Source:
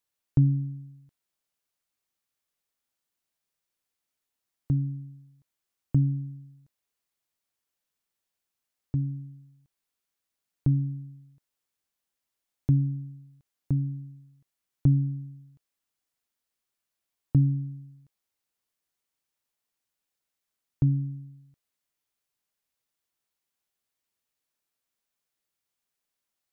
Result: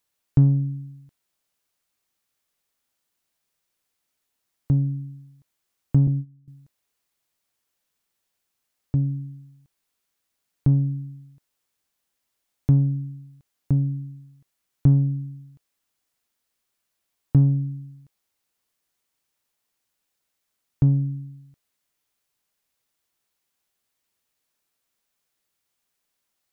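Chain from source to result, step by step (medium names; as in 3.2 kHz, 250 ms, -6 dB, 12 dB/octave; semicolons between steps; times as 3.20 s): 6.07–6.48 s: gate -32 dBFS, range -18 dB; in parallel at -5.5 dB: saturation -24.5 dBFS, distortion -8 dB; on the sum: trim +3 dB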